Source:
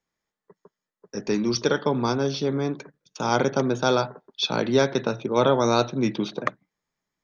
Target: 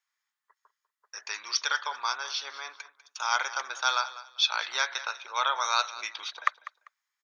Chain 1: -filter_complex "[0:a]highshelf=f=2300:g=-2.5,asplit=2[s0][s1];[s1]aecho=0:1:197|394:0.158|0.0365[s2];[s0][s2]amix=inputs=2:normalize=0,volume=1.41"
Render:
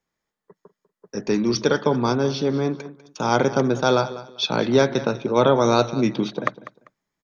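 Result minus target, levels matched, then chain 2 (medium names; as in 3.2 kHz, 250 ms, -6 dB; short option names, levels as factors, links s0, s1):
1 kHz band -3.0 dB
-filter_complex "[0:a]highpass=f=1100:w=0.5412,highpass=f=1100:w=1.3066,highshelf=f=2300:g=-2.5,asplit=2[s0][s1];[s1]aecho=0:1:197|394:0.158|0.0365[s2];[s0][s2]amix=inputs=2:normalize=0,volume=1.41"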